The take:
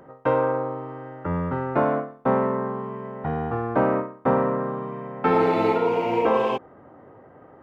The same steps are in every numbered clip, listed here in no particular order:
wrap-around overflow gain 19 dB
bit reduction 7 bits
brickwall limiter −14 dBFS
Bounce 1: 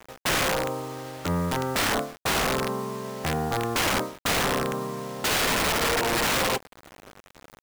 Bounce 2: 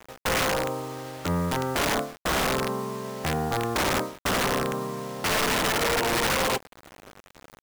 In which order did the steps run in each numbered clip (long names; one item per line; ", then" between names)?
bit reduction, then wrap-around overflow, then brickwall limiter
brickwall limiter, then bit reduction, then wrap-around overflow